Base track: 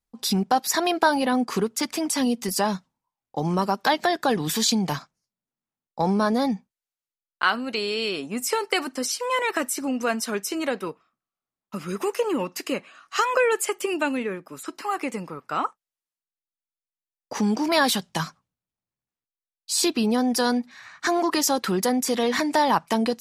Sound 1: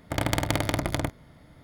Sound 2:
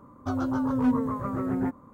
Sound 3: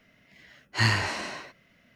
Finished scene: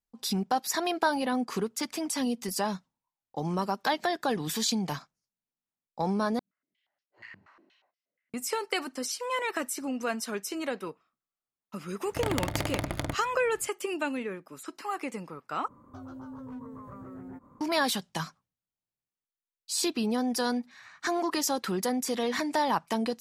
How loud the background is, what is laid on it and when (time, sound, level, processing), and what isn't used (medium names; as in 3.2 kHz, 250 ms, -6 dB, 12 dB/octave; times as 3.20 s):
base track -6.5 dB
6.39 s: replace with 3 -17 dB + step-sequenced band-pass 8.4 Hz 200–5000 Hz
12.05 s: add 1 -5 dB
15.68 s: replace with 2 -5 dB + compression 3:1, threshold -39 dBFS